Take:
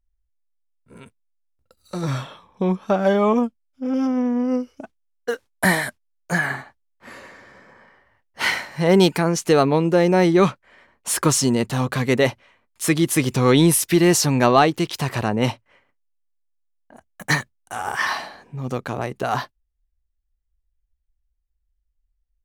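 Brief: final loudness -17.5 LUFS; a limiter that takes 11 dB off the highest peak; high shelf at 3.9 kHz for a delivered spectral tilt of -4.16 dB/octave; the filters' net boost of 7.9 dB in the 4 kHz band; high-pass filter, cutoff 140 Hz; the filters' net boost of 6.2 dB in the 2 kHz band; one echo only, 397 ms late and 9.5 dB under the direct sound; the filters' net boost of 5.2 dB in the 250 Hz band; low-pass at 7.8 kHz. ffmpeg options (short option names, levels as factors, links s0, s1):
-af "highpass=140,lowpass=7800,equalizer=f=250:t=o:g=7.5,equalizer=f=2000:t=o:g=5,highshelf=f=3900:g=4.5,equalizer=f=4000:t=o:g=6,alimiter=limit=0.422:level=0:latency=1,aecho=1:1:397:0.335,volume=1.19"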